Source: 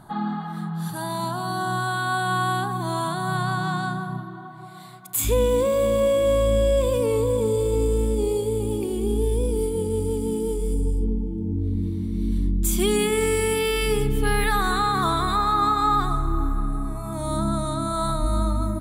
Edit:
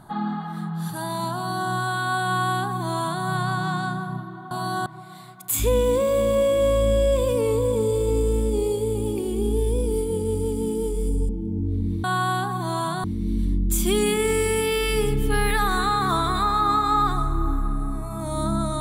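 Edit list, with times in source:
1.35–1.7 copy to 4.51
2.24–3.24 copy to 11.97
10.94–11.22 cut

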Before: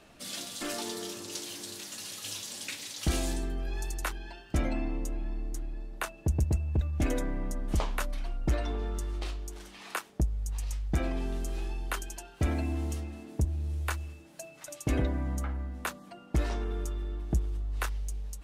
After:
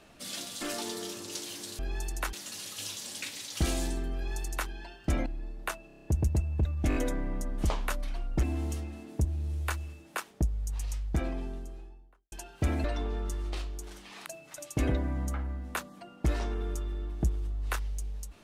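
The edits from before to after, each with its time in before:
3.61–4.15 copy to 1.79
4.72–5.6 cut
6.21 stutter 0.03 s, 7 plays
7.05 stutter 0.02 s, 4 plays
8.53–9.95 swap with 12.63–14.36
10.65–12.11 studio fade out

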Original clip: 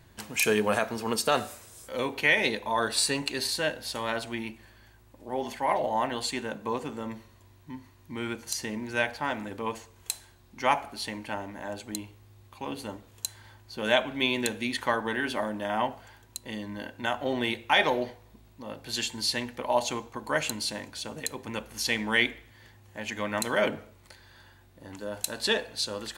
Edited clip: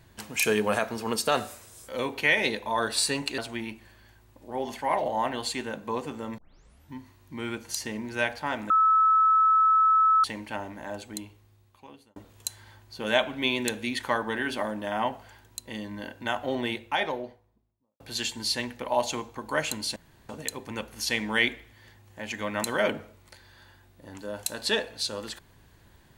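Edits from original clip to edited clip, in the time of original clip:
3.38–4.16 cut
7.16 tape start 0.55 s
9.48–11.02 bleep 1300 Hz -17 dBFS
11.72–12.94 fade out
17.16–18.78 studio fade out
20.74–21.07 room tone

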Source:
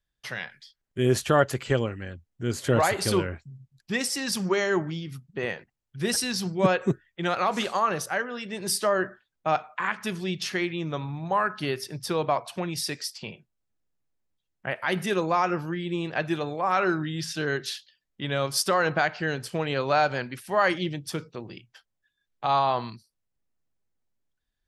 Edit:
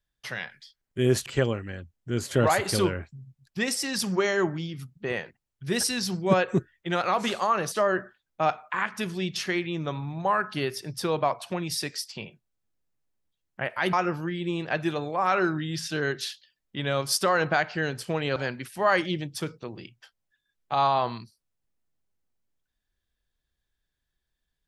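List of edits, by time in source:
1.26–1.59 cut
8.05–8.78 cut
14.99–15.38 cut
19.81–20.08 cut

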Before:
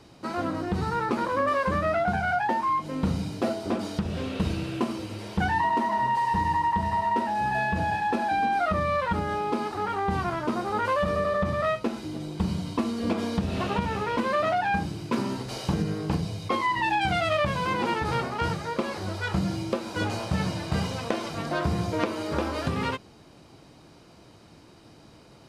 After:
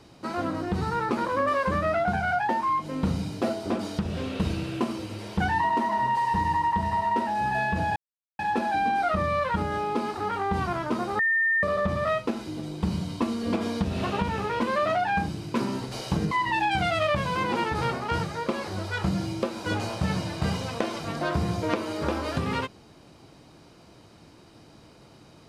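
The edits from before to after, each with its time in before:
7.96 insert silence 0.43 s
10.76–11.2 bleep 1810 Hz -20 dBFS
15.88–16.61 cut

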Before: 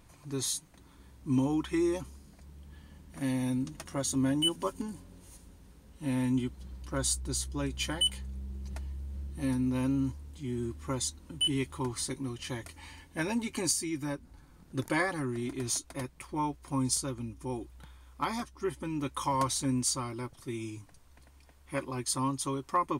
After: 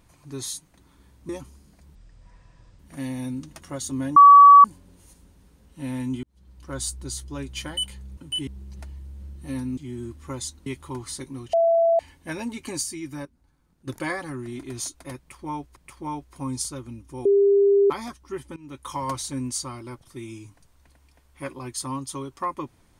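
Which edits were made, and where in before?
1.29–1.89 cut
2.55–3.03 speed 57%
4.4–4.88 bleep 1140 Hz -6 dBFS
6.47–7.02 fade in
9.71–10.37 cut
11.26–11.56 move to 8.41
12.43–12.89 bleep 668 Hz -15.5 dBFS
14.15–14.77 gain -10 dB
16.08–16.66 loop, 2 plays
17.57–18.22 bleep 400 Hz -14 dBFS
18.88–19.24 fade in linear, from -17.5 dB

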